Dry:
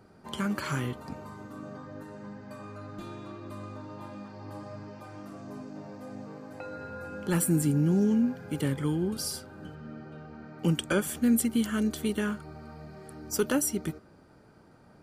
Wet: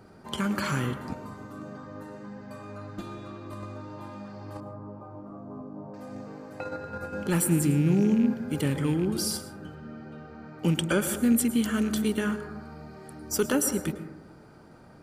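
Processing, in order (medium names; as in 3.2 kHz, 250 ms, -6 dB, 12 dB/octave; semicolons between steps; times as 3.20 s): rattle on loud lows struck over -27 dBFS, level -35 dBFS; 4.60–5.94 s: FFT filter 1.2 kHz 0 dB, 1.8 kHz -20 dB, 7.3 kHz -28 dB; in parallel at 0 dB: level held to a coarse grid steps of 20 dB; on the sum: plate-style reverb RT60 0.98 s, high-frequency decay 0.25×, pre-delay 95 ms, DRR 10 dB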